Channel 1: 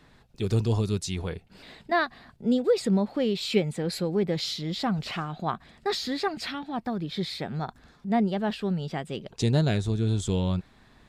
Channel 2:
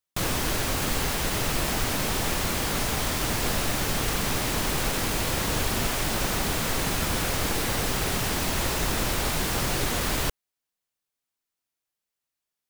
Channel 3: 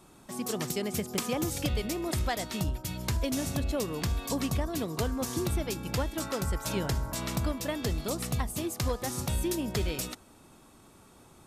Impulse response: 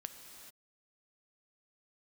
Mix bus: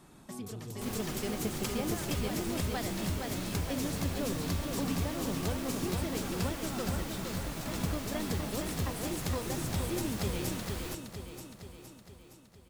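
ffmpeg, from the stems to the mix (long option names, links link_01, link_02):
-filter_complex "[0:a]volume=-9.5dB[link_01];[1:a]adelay=650,volume=-16dB,asplit=2[link_02][link_03];[link_03]volume=-15dB[link_04];[2:a]volume=-3dB,asplit=3[link_05][link_06][link_07];[link_05]atrim=end=6.58,asetpts=PTS-STARTPTS,afade=type=out:start_time=6.576:duration=0.004:curve=hsin[link_08];[link_06]atrim=start=6.58:end=7.19,asetpts=PTS-STARTPTS,volume=0[link_09];[link_07]atrim=start=7.19,asetpts=PTS-STARTPTS,afade=type=in:duration=0.004:curve=hsin[link_10];[link_08][link_09][link_10]concat=n=3:v=0:a=1,asplit=2[link_11][link_12];[link_12]volume=-3.5dB[link_13];[link_01][link_11]amix=inputs=2:normalize=0,asoftclip=type=tanh:threshold=-24dB,acompressor=threshold=-42dB:ratio=6,volume=0dB[link_14];[link_04][link_13]amix=inputs=2:normalize=0,aecho=0:1:465|930|1395|1860|2325|2790|3255|3720|4185:1|0.57|0.325|0.185|0.106|0.0602|0.0343|0.0195|0.0111[link_15];[link_02][link_14][link_15]amix=inputs=3:normalize=0,equalizer=frequency=190:width=0.97:gain=4"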